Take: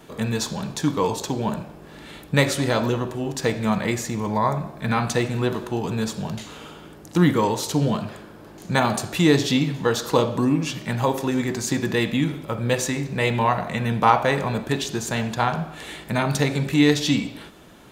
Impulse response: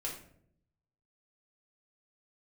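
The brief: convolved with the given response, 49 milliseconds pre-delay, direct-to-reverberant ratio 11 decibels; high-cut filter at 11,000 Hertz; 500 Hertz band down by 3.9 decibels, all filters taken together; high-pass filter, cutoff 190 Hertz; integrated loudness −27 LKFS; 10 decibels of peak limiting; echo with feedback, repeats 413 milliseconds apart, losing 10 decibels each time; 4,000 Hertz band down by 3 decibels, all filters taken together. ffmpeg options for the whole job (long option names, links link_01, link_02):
-filter_complex "[0:a]highpass=190,lowpass=11000,equalizer=frequency=500:width_type=o:gain=-4.5,equalizer=frequency=4000:width_type=o:gain=-3.5,alimiter=limit=-13.5dB:level=0:latency=1,aecho=1:1:413|826|1239|1652:0.316|0.101|0.0324|0.0104,asplit=2[link_01][link_02];[1:a]atrim=start_sample=2205,adelay=49[link_03];[link_02][link_03]afir=irnorm=-1:irlink=0,volume=-12dB[link_04];[link_01][link_04]amix=inputs=2:normalize=0,volume=-0.5dB"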